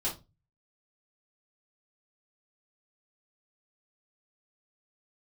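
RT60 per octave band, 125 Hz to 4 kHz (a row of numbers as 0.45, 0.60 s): 0.55, 0.35, 0.25, 0.25, 0.20, 0.20 s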